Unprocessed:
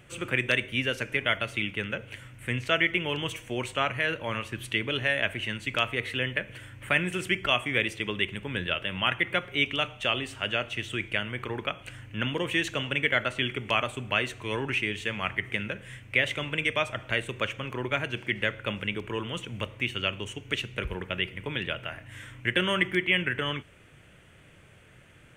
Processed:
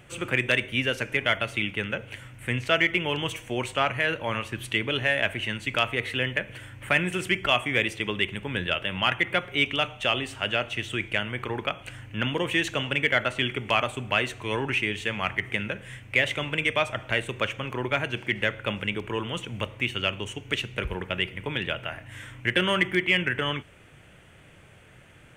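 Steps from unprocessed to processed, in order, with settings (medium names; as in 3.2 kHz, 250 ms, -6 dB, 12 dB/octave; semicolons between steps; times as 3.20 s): peaking EQ 800 Hz +3.5 dB 0.56 oct; in parallel at -11 dB: hard clipper -18.5 dBFS, distortion -14 dB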